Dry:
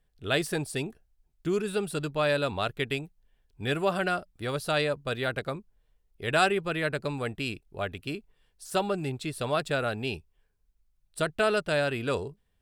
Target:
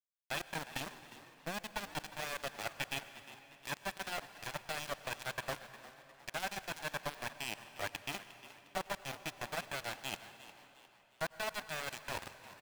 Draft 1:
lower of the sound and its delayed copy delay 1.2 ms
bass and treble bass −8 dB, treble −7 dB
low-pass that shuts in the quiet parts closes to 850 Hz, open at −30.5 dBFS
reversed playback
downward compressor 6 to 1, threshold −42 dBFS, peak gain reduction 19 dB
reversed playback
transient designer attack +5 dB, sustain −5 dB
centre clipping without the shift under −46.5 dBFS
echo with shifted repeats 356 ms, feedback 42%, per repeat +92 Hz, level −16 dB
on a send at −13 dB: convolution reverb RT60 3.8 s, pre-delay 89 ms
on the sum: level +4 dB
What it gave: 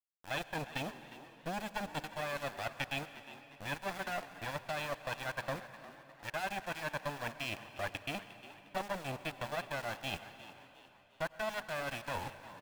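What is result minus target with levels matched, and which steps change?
centre clipping without the shift: distortion −11 dB
change: centre clipping without the shift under −38 dBFS

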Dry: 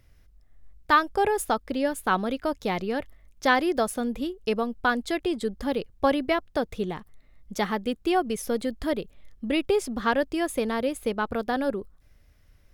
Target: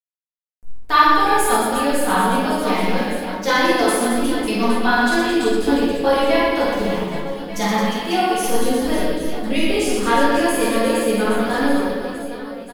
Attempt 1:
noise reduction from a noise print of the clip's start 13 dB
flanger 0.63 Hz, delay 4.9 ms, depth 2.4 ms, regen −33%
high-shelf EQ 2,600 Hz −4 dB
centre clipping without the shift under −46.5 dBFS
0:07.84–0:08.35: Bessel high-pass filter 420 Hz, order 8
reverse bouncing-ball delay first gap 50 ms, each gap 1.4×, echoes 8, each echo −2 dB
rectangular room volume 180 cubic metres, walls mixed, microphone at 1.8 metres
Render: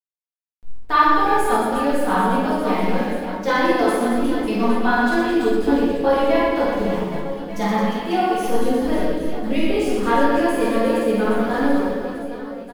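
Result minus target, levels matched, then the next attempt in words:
4,000 Hz band −6.0 dB
noise reduction from a noise print of the clip's start 13 dB
flanger 0.63 Hz, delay 4.9 ms, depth 2.4 ms, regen −33%
high-shelf EQ 2,600 Hz +7.5 dB
centre clipping without the shift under −46.5 dBFS
0:07.84–0:08.35: Bessel high-pass filter 420 Hz, order 8
reverse bouncing-ball delay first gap 50 ms, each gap 1.4×, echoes 8, each echo −2 dB
rectangular room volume 180 cubic metres, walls mixed, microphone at 1.8 metres

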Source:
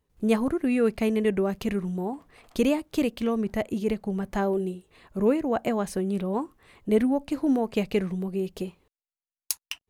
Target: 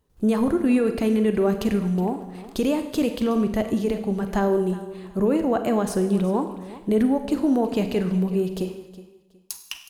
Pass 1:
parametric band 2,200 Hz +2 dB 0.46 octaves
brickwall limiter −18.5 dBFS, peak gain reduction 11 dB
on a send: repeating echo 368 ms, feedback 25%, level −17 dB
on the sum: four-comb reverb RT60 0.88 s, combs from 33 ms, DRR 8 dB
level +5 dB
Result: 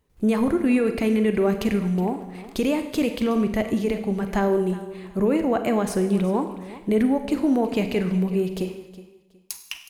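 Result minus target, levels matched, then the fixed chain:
2,000 Hz band +3.5 dB
parametric band 2,200 Hz −5.5 dB 0.46 octaves
brickwall limiter −18.5 dBFS, peak gain reduction 11 dB
on a send: repeating echo 368 ms, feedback 25%, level −17 dB
on the sum: four-comb reverb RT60 0.88 s, combs from 33 ms, DRR 8 dB
level +5 dB

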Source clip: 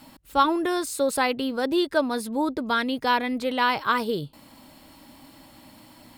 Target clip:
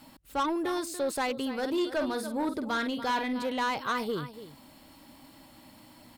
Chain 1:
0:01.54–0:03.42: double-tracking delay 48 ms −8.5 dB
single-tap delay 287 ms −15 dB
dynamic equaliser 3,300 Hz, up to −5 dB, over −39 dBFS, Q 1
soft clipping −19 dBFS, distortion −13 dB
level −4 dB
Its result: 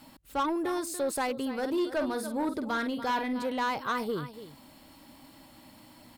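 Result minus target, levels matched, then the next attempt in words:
4,000 Hz band −3.0 dB
0:01.54–0:03.42: double-tracking delay 48 ms −8.5 dB
single-tap delay 287 ms −15 dB
dynamic equaliser 11,000 Hz, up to −5 dB, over −39 dBFS, Q 1
soft clipping −19 dBFS, distortion −12 dB
level −4 dB

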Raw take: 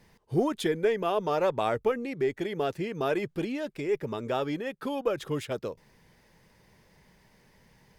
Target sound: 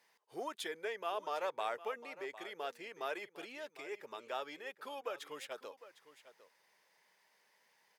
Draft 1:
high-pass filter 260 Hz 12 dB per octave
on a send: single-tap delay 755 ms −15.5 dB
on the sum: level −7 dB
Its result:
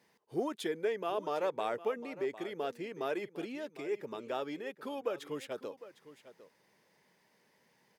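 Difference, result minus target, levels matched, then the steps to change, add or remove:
250 Hz band +8.0 dB
change: high-pass filter 730 Hz 12 dB per octave

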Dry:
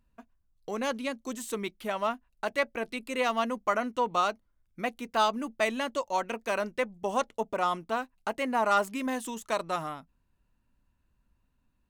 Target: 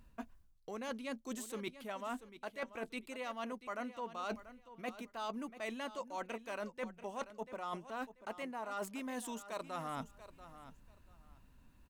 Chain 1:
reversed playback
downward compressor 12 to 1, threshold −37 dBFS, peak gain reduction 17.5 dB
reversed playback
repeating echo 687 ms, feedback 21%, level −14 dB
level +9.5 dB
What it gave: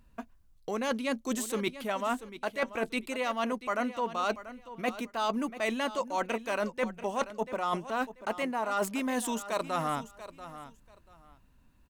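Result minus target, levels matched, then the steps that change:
downward compressor: peak gain reduction −11 dB
change: downward compressor 12 to 1, threshold −49 dBFS, peak gain reduction 28.5 dB

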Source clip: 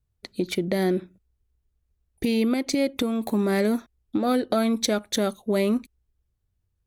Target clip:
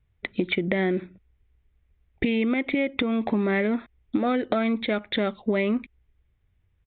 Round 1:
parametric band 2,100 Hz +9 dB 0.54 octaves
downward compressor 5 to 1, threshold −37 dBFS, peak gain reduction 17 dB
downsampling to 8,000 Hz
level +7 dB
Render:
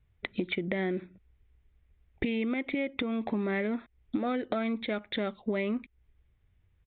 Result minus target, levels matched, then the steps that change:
downward compressor: peak gain reduction +7 dB
change: downward compressor 5 to 1, threshold −28.5 dBFS, peak gain reduction 10 dB

